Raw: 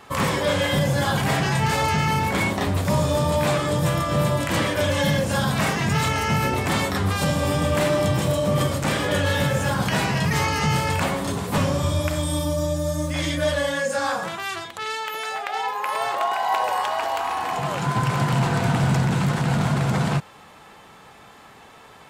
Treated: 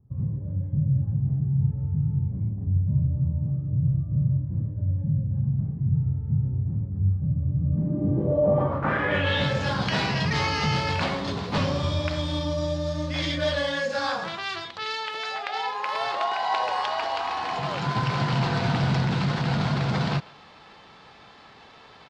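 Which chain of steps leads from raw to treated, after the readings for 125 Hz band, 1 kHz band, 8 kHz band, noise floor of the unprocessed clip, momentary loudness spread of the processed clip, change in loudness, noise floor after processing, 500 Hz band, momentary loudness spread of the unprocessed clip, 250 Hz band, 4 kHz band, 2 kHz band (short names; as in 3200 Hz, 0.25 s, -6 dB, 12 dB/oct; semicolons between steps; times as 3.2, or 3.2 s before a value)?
-0.5 dB, -5.5 dB, -15.5 dB, -47 dBFS, 5 LU, -3.5 dB, -50 dBFS, -5.5 dB, 5 LU, -4.0 dB, -3.5 dB, -5.0 dB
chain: median filter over 5 samples; speakerphone echo 0.15 s, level -21 dB; low-pass sweep 120 Hz -> 4600 Hz, 7.59–9.52; gain -3.5 dB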